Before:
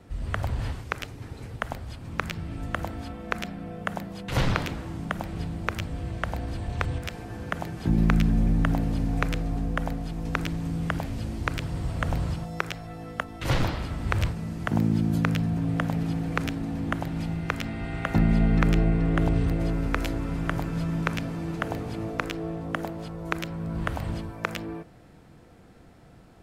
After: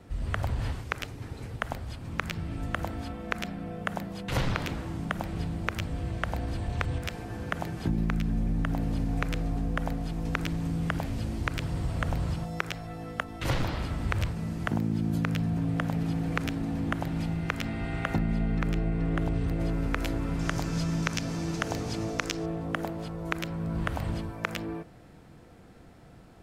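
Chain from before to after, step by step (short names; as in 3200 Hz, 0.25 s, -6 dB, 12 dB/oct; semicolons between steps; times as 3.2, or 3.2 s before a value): 20.39–22.46 bell 5900 Hz +14 dB 1.1 oct; compressor 6:1, threshold -24 dBFS, peak gain reduction 8.5 dB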